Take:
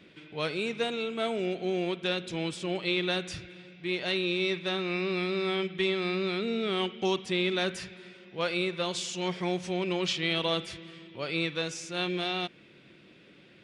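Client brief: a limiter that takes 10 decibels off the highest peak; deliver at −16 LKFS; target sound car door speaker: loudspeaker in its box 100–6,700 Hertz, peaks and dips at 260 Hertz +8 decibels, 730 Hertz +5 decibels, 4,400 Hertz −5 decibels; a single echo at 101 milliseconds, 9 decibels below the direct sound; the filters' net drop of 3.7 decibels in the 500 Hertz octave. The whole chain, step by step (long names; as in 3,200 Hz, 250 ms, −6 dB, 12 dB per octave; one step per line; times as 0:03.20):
parametric band 500 Hz −7.5 dB
brickwall limiter −26.5 dBFS
loudspeaker in its box 100–6,700 Hz, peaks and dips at 260 Hz +8 dB, 730 Hz +5 dB, 4,400 Hz −5 dB
single-tap delay 101 ms −9 dB
level +19.5 dB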